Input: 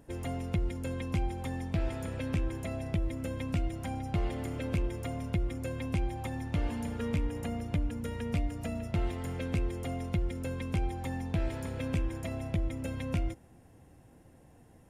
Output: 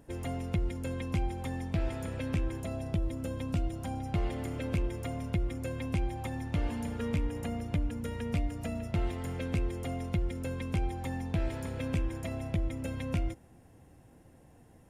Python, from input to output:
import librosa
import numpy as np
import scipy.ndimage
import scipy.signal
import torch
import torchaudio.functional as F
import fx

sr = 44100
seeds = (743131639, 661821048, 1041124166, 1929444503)

y = fx.peak_eq(x, sr, hz=2100.0, db=-6.5, octaves=0.62, at=(2.6, 4.02))